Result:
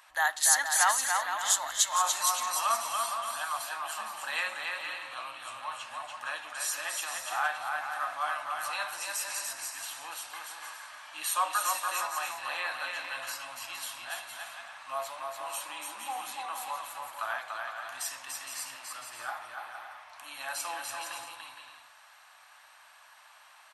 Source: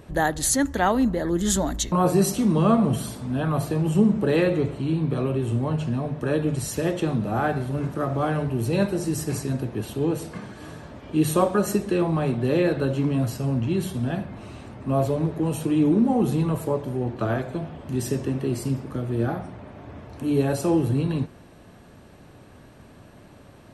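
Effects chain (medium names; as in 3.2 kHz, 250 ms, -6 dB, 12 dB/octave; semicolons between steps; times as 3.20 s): inverse Chebyshev high-pass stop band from 450 Hz, stop band 40 dB; bouncing-ball echo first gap 290 ms, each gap 0.6×, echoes 5; on a send at -20 dB: reverberation RT60 0.55 s, pre-delay 5 ms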